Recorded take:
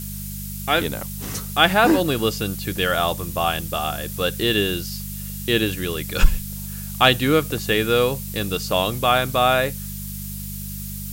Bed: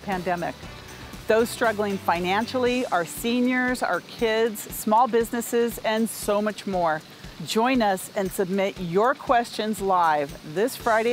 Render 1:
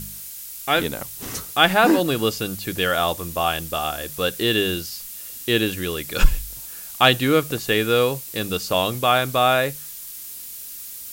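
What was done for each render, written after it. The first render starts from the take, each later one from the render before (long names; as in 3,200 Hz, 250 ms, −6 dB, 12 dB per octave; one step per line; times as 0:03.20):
hum removal 50 Hz, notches 4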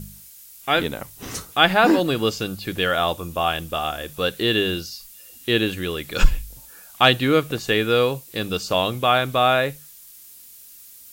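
noise reduction from a noise print 9 dB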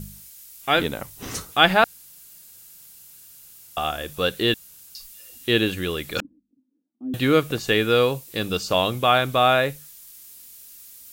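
0:01.84–0:03.77: fill with room tone
0:04.54–0:04.95: fill with room tone
0:06.20–0:07.14: flat-topped band-pass 270 Hz, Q 4.6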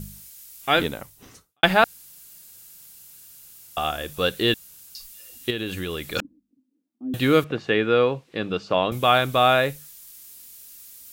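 0:00.83–0:01.63: fade out quadratic
0:05.50–0:06.08: downward compressor 5 to 1, threshold −25 dBFS
0:07.44–0:08.92: band-pass filter 130–2,500 Hz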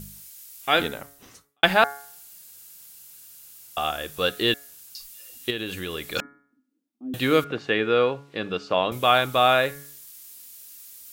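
low-shelf EQ 280 Hz −6 dB
hum removal 141.4 Hz, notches 16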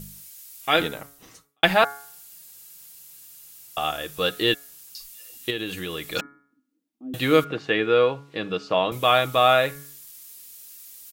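notch filter 1,500 Hz, Q 20
comb filter 6.3 ms, depth 33%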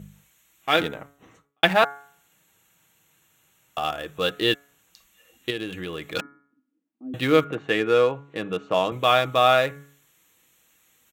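adaptive Wiener filter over 9 samples
high-pass filter 55 Hz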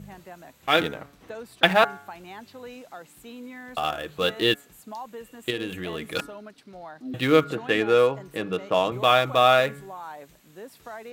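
mix in bed −18.5 dB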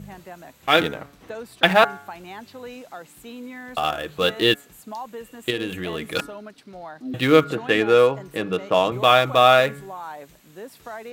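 level +3.5 dB
brickwall limiter −1 dBFS, peak gain reduction 2.5 dB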